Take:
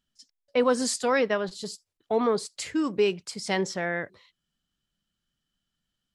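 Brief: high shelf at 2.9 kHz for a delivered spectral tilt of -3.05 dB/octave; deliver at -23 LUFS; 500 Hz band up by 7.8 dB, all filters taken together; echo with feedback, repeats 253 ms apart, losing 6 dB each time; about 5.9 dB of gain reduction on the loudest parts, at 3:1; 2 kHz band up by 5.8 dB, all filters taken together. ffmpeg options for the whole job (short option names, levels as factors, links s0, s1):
-af "equalizer=f=500:t=o:g=8.5,equalizer=f=2000:t=o:g=5,highshelf=f=2900:g=4,acompressor=threshold=0.112:ratio=3,aecho=1:1:253|506|759|1012|1265|1518:0.501|0.251|0.125|0.0626|0.0313|0.0157,volume=1.12"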